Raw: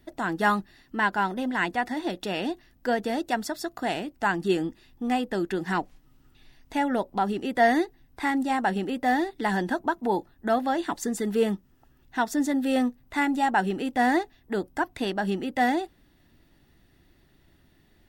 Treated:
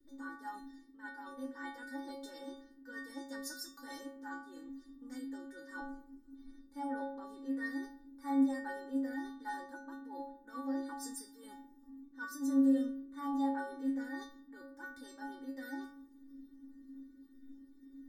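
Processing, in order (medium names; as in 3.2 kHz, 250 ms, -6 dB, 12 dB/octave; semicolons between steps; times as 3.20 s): static phaser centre 710 Hz, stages 6; reverse; compression 6:1, threshold -37 dBFS, peak gain reduction 16 dB; reverse; band noise 230–370 Hz -52 dBFS; inharmonic resonator 270 Hz, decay 0.73 s, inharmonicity 0.008; three bands expanded up and down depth 40%; trim +15 dB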